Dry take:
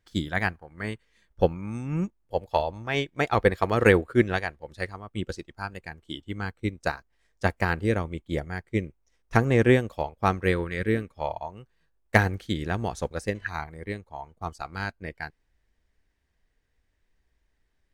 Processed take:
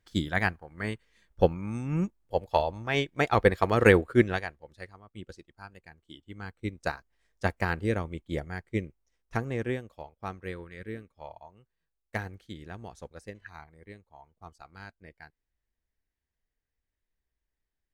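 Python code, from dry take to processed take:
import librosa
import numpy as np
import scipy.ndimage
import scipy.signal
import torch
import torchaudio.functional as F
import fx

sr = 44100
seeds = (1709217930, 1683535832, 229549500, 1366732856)

y = fx.gain(x, sr, db=fx.line((4.19, -0.5), (4.85, -12.0), (6.2, -12.0), (6.77, -3.5), (8.76, -3.5), (9.85, -14.0)))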